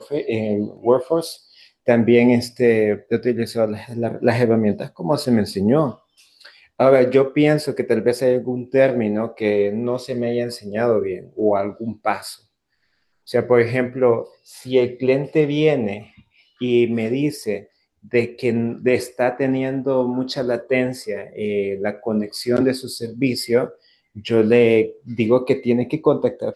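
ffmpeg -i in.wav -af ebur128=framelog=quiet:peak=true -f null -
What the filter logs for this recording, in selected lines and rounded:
Integrated loudness:
  I:         -19.7 LUFS
  Threshold: -30.2 LUFS
Loudness range:
  LRA:         4.1 LU
  Threshold: -40.3 LUFS
  LRA low:   -22.4 LUFS
  LRA high:  -18.4 LUFS
True peak:
  Peak:       -1.1 dBFS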